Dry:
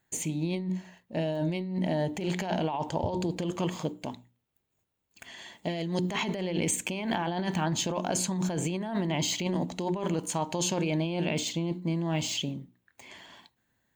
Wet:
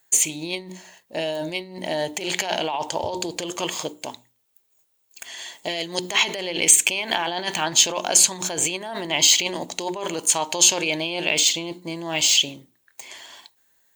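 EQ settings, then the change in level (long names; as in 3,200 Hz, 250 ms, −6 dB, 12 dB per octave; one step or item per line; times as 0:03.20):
bass and treble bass −11 dB, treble +11 dB
dynamic equaliser 2,700 Hz, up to +7 dB, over −43 dBFS, Q 1
parametric band 200 Hz −7 dB 0.84 octaves
+5.5 dB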